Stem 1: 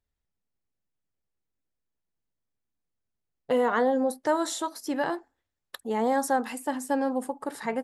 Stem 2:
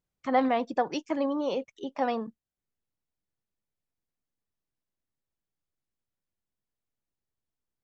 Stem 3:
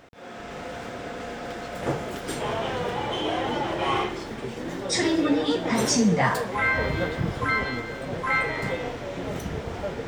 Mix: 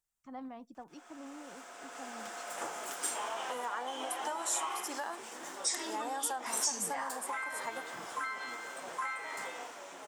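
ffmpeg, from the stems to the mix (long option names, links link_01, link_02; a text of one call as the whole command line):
ffmpeg -i stem1.wav -i stem2.wav -i stem3.wav -filter_complex "[0:a]volume=3dB[link_01];[1:a]lowshelf=frequency=180:gain=11,volume=-17.5dB[link_02];[2:a]dynaudnorm=framelen=280:gausssize=9:maxgain=11.5dB,adelay=750,volume=-9dB[link_03];[link_01][link_03]amix=inputs=2:normalize=0,highpass=700,acompressor=threshold=-29dB:ratio=6,volume=0dB[link_04];[link_02][link_04]amix=inputs=2:normalize=0,equalizer=frequency=125:width_type=o:width=1:gain=-7,equalizer=frequency=500:width_type=o:width=1:gain=-9,equalizer=frequency=2000:width_type=o:width=1:gain=-7,equalizer=frequency=4000:width_type=o:width=1:gain=-8,equalizer=frequency=8000:width_type=o:width=1:gain=7" out.wav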